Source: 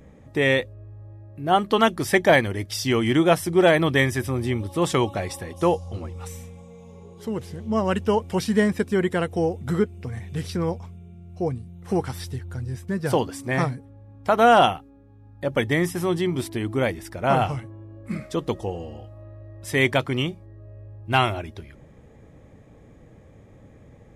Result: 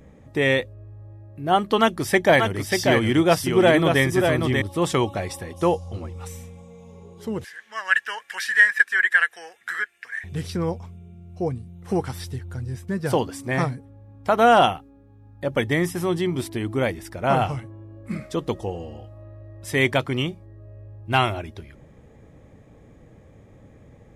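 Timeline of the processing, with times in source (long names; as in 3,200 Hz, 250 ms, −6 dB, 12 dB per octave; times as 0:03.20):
0:01.80–0:04.62: single-tap delay 588 ms −4.5 dB
0:07.44–0:10.24: high-pass with resonance 1,700 Hz, resonance Q 13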